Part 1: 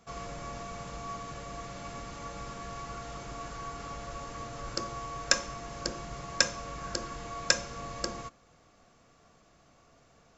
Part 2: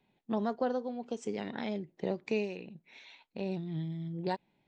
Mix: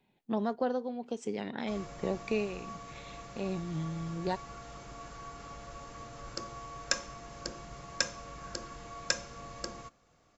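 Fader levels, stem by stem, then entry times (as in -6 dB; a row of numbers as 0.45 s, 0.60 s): -5.5 dB, +0.5 dB; 1.60 s, 0.00 s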